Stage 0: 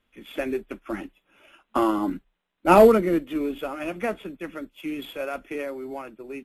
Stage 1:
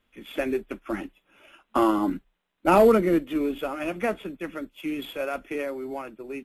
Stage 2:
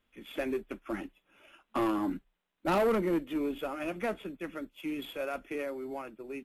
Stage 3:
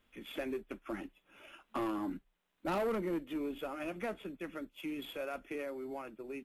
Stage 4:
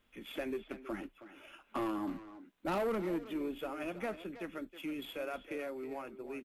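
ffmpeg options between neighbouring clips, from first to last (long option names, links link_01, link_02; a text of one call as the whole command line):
ffmpeg -i in.wav -af "alimiter=level_in=9dB:limit=-1dB:release=50:level=0:latency=1,volume=-8dB" out.wav
ffmpeg -i in.wav -af "asoftclip=type=tanh:threshold=-18dB,volume=-5dB" out.wav
ffmpeg -i in.wav -af "acompressor=threshold=-55dB:ratio=1.5,volume=3.5dB" out.wav
ffmpeg -i in.wav -filter_complex "[0:a]asplit=2[link_01][link_02];[link_02]adelay=320,highpass=300,lowpass=3400,asoftclip=type=hard:threshold=-36.5dB,volume=-11dB[link_03];[link_01][link_03]amix=inputs=2:normalize=0" out.wav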